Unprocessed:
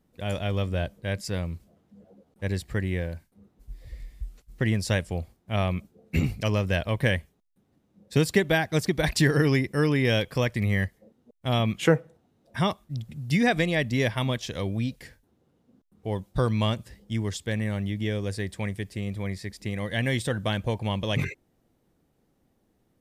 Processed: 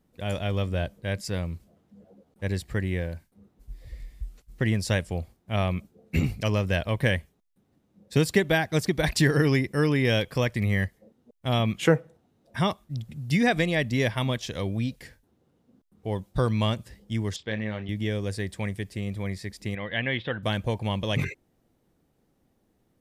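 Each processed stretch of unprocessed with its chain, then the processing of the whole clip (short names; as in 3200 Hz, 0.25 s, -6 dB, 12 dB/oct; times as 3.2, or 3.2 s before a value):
17.36–17.89 LPF 4500 Hz 24 dB/oct + low shelf 150 Hz -12 dB + doubler 28 ms -9 dB
19.75–20.43 steep low-pass 3300 Hz + tilt +2 dB/oct
whole clip: dry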